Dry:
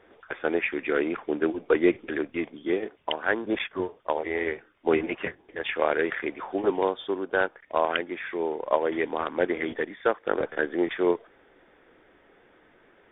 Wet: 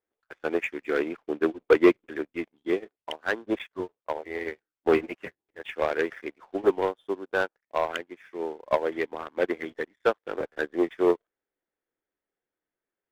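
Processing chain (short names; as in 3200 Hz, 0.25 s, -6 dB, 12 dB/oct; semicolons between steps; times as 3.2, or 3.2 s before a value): sample leveller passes 2; upward expander 2.5:1, over -32 dBFS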